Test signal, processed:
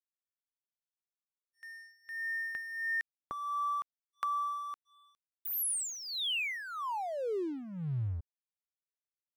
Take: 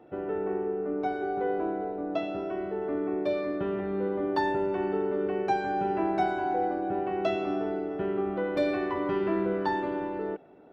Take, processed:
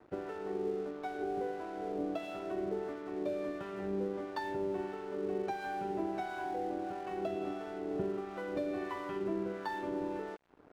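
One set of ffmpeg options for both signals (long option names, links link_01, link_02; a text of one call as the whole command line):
ffmpeg -i in.wav -filter_complex "[0:a]acompressor=threshold=-32dB:ratio=10,acrossover=split=740[link_01][link_02];[link_01]aeval=exprs='val(0)*(1-0.7/2+0.7/2*cos(2*PI*1.5*n/s))':channel_layout=same[link_03];[link_02]aeval=exprs='val(0)*(1-0.7/2-0.7/2*cos(2*PI*1.5*n/s))':channel_layout=same[link_04];[link_03][link_04]amix=inputs=2:normalize=0,aeval=exprs='sgn(val(0))*max(abs(val(0))-0.00158,0)':channel_layout=same,volume=2.5dB" out.wav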